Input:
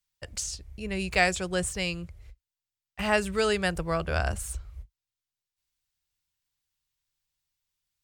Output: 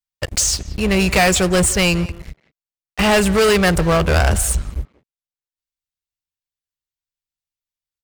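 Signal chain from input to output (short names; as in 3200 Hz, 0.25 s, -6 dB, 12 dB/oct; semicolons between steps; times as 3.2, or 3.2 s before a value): sample leveller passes 5; speakerphone echo 0.18 s, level -14 dB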